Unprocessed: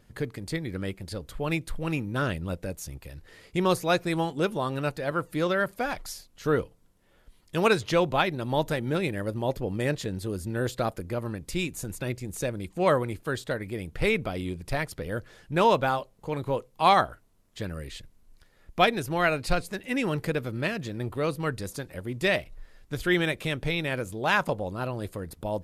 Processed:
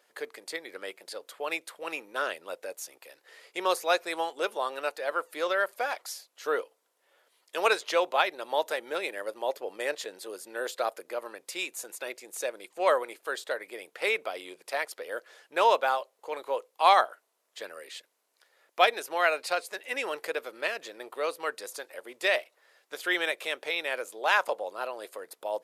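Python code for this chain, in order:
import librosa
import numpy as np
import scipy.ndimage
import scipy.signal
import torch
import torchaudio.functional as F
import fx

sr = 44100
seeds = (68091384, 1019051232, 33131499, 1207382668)

y = scipy.signal.sosfilt(scipy.signal.butter(4, 470.0, 'highpass', fs=sr, output='sos'), x)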